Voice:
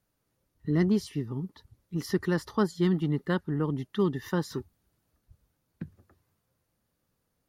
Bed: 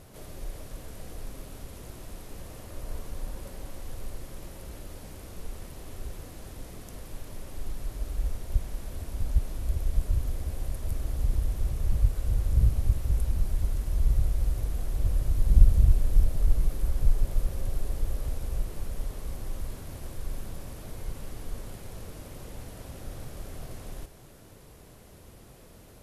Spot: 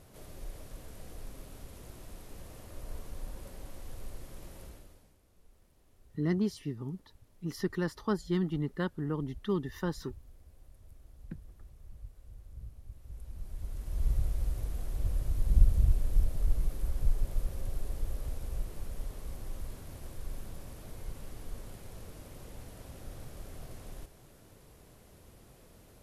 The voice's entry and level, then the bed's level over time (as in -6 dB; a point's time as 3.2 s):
5.50 s, -5.0 dB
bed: 4.64 s -5.5 dB
5.2 s -24 dB
12.87 s -24 dB
14.06 s -5.5 dB